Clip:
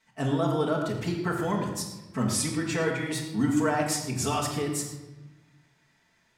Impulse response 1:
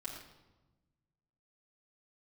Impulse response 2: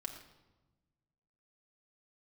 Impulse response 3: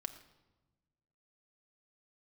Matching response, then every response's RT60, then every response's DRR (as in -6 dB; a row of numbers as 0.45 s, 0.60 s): 1; 1.1 s, 1.1 s, 1.1 s; -7.0 dB, 1.5 dB, 7.0 dB